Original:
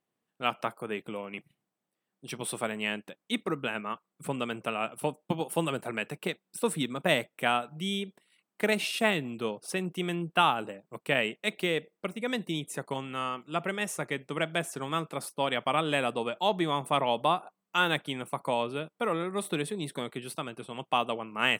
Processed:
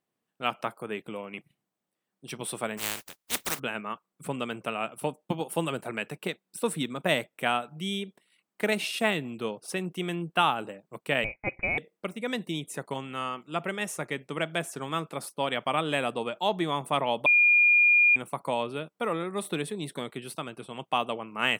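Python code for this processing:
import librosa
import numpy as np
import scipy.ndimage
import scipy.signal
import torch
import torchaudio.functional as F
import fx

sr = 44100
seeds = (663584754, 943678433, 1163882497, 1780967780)

y = fx.spec_flatten(x, sr, power=0.17, at=(2.77, 3.58), fade=0.02)
y = fx.freq_invert(y, sr, carrier_hz=2700, at=(11.24, 11.78))
y = fx.edit(y, sr, fx.bleep(start_s=17.26, length_s=0.9, hz=2420.0, db=-16.5), tone=tone)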